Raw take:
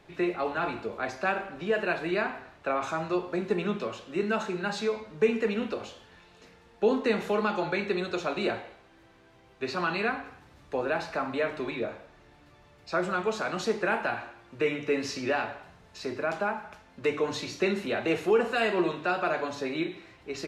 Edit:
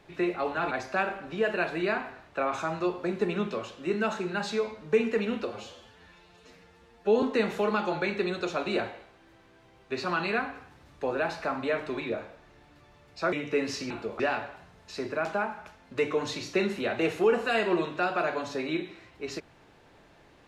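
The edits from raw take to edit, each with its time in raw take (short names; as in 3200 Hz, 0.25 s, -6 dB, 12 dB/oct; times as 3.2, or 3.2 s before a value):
0.71–1 move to 15.26
5.76–6.93 stretch 1.5×
13.03–14.68 cut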